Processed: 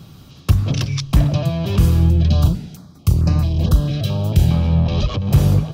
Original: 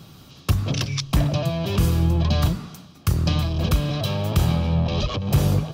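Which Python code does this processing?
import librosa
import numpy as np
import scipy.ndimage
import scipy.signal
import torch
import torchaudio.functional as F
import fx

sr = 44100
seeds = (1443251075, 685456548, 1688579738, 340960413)

y = fx.low_shelf(x, sr, hz=210.0, db=7.5)
y = fx.filter_held_notch(y, sr, hz=4.5, low_hz=970.0, high_hz=3300.0, at=(2.1, 4.51))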